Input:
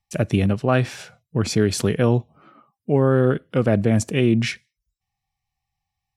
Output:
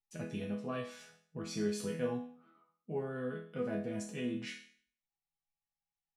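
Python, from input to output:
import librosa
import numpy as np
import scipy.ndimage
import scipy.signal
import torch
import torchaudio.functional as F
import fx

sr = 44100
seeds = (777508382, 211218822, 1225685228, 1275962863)

y = fx.resonator_bank(x, sr, root=52, chord='major', decay_s=0.5)
y = y * 10.0 ** (1.0 / 20.0)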